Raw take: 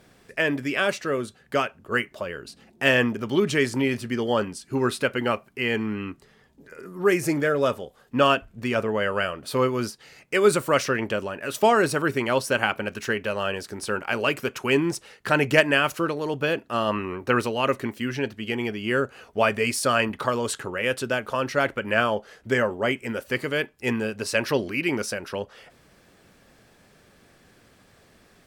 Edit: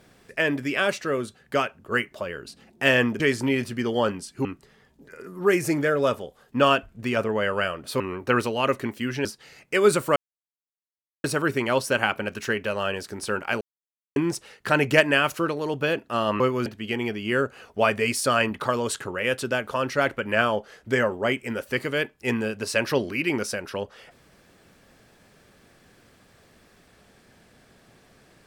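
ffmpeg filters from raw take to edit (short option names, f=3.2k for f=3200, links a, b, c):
-filter_complex "[0:a]asplit=11[a][b][c][d][e][f][g][h][i][j][k];[a]atrim=end=3.202[l];[b]atrim=start=3.528:end=4.782[m];[c]atrim=start=6.038:end=9.592[n];[d]atrim=start=16.998:end=18.252[o];[e]atrim=start=9.848:end=10.76,asetpts=PTS-STARTPTS,afade=t=out:st=0.908:d=0.004:c=hsin[p];[f]atrim=start=10.76:end=11.84,asetpts=PTS-STARTPTS,volume=0[q];[g]atrim=start=11.84:end=14.21,asetpts=PTS-STARTPTS,afade=t=in:d=0.004:c=hsin,afade=t=out:st=2.366:d=0.004:c=hsin[r];[h]atrim=start=14.21:end=14.76,asetpts=PTS-STARTPTS,volume=0[s];[i]atrim=start=14.76:end=17.002,asetpts=PTS-STARTPTS,afade=t=in:d=0.004:c=hsin[t];[j]atrim=start=9.588:end=9.852[u];[k]atrim=start=18.248[v];[l][m]acrossfade=d=0.004:c1=hsin:c2=hsin[w];[w][n]acrossfade=d=0.004:c1=hsin:c2=hsin[x];[x][o]acrossfade=d=0.004:c1=hsin:c2=hsin[y];[p][q][r][s][t]concat=n=5:v=0:a=1[z];[y][z]acrossfade=d=0.004:c1=hsin:c2=hsin[aa];[aa][u]acrossfade=d=0.004:c1=hsin:c2=hsin[ab];[ab][v]acrossfade=d=0.004:c1=hsin:c2=hsin"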